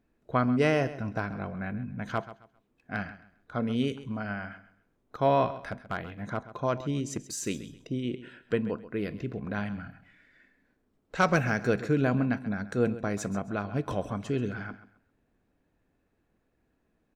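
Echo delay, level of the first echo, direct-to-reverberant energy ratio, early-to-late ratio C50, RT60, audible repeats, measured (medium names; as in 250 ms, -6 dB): 133 ms, -15.0 dB, no reverb, no reverb, no reverb, 2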